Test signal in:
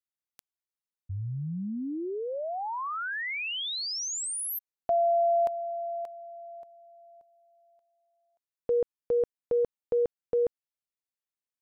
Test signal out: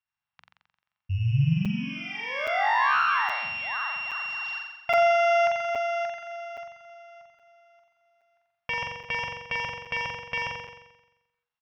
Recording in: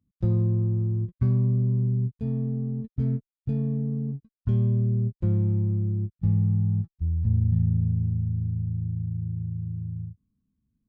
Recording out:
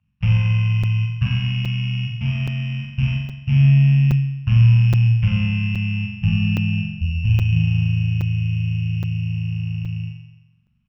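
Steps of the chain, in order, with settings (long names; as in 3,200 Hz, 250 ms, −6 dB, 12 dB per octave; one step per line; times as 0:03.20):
samples sorted by size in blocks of 16 samples
Chebyshev band-stop filter 150–940 Hz, order 2
low-shelf EQ 110 Hz −10 dB
mains-hum notches 60/120/180/240/300/360/420/480 Hz
in parallel at 0 dB: brickwall limiter −25.5 dBFS
on the sum: high-frequency loss of the air 430 metres
on a send: flutter between parallel walls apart 7.5 metres, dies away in 0.99 s
on the sum: downsampling to 16,000 Hz
regular buffer underruns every 0.82 s, samples 256, zero, from 0:00.83
level +7.5 dB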